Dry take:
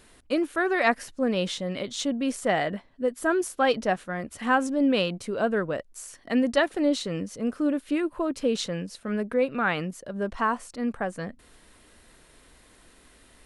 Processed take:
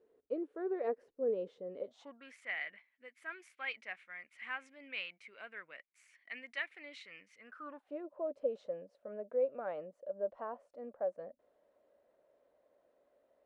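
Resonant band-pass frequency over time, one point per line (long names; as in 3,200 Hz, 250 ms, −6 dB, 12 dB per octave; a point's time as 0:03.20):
resonant band-pass, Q 8.1
0:01.79 450 Hz
0:02.37 2,200 Hz
0:07.38 2,200 Hz
0:07.98 580 Hz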